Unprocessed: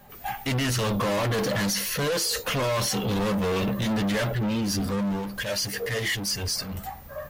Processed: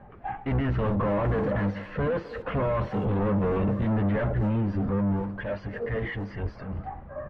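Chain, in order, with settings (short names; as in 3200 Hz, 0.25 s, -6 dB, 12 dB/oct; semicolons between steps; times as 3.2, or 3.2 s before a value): octaver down 1 oct, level -4 dB; reverse; upward compressor, threshold -34 dBFS; reverse; Bessel low-pass 1300 Hz, order 4; speakerphone echo 0.25 s, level -15 dB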